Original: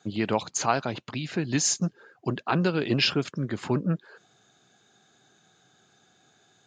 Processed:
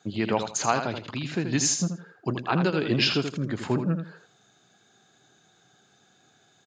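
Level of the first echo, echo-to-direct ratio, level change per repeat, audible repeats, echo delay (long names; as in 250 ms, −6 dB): −7.5 dB, −7.5 dB, −13.0 dB, 3, 81 ms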